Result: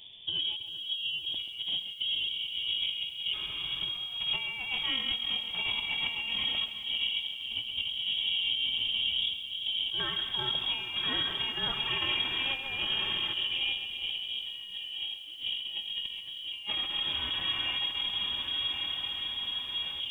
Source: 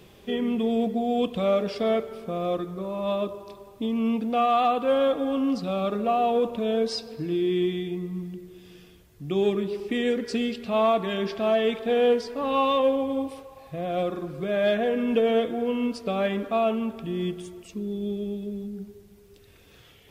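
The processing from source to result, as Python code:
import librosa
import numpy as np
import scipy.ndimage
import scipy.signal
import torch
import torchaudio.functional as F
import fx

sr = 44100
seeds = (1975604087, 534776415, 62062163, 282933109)

y = fx.low_shelf(x, sr, hz=310.0, db=4.0)
y = fx.echo_diffused(y, sr, ms=1256, feedback_pct=55, wet_db=-4.0)
y = fx.filter_lfo_notch(y, sr, shape='square', hz=0.15, low_hz=450.0, high_hz=2100.0, q=0.74)
y = fx.low_shelf(y, sr, hz=93.0, db=5.0)
y = fx.hum_notches(y, sr, base_hz=60, count=6)
y = fx.freq_invert(y, sr, carrier_hz=3500)
y = fx.over_compress(y, sr, threshold_db=-28.0, ratio=-0.5)
y = y + 10.0 ** (-11.5 / 20.0) * np.pad(y, (int(133 * sr / 1000.0), 0))[:len(y)]
y = fx.echo_crushed(y, sr, ms=391, feedback_pct=35, bits=8, wet_db=-12.0)
y = y * librosa.db_to_amplitude(-5.0)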